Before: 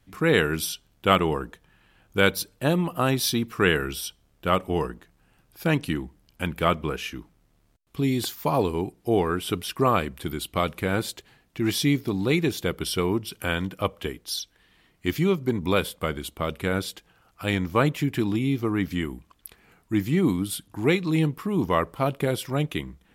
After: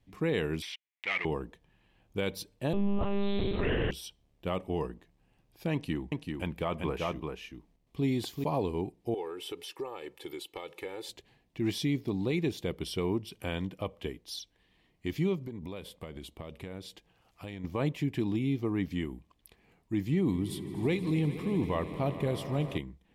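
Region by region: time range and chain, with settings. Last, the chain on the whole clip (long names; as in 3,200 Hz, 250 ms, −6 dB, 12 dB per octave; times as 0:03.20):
0:00.62–0:01.25: leveller curve on the samples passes 5 + resonant band-pass 2,100 Hz, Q 5.6 + one half of a high-frequency compander encoder only
0:02.73–0:03.91: flutter between parallel walls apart 3.9 metres, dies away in 1.2 s + one-pitch LPC vocoder at 8 kHz 200 Hz
0:05.73–0:08.44: dynamic equaliser 1,000 Hz, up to +6 dB, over −37 dBFS, Q 0.93 + single-tap delay 387 ms −4.5 dB
0:09.14–0:11.09: high-pass filter 340 Hz + downward compressor 5 to 1, threshold −30 dBFS + comb filter 2.3 ms, depth 78%
0:15.41–0:17.64: downward compressor, threshold −31 dBFS + one half of a high-frequency compander encoder only
0:20.09–0:22.78: low-shelf EQ 64 Hz +11 dB + echo that builds up and dies away 80 ms, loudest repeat 5, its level −18 dB
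whole clip: low-pass filter 3,500 Hz 6 dB per octave; parametric band 1,400 Hz −12 dB 0.47 octaves; brickwall limiter −15 dBFS; level −5.5 dB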